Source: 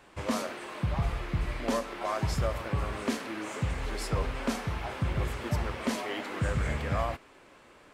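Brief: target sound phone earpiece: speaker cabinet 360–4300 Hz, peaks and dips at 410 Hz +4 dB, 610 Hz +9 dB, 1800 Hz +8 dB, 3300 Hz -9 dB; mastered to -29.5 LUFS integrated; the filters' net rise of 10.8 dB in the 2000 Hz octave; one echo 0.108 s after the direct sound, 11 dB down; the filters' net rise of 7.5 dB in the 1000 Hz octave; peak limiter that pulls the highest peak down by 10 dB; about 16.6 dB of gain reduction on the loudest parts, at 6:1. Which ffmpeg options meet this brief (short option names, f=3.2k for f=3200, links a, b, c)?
-af "equalizer=f=1k:t=o:g=6,equalizer=f=2k:t=o:g=6,acompressor=threshold=-42dB:ratio=6,alimiter=level_in=15.5dB:limit=-24dB:level=0:latency=1,volume=-15.5dB,highpass=360,equalizer=f=410:t=q:w=4:g=4,equalizer=f=610:t=q:w=4:g=9,equalizer=f=1.8k:t=q:w=4:g=8,equalizer=f=3.3k:t=q:w=4:g=-9,lowpass=f=4.3k:w=0.5412,lowpass=f=4.3k:w=1.3066,aecho=1:1:108:0.282,volume=16.5dB"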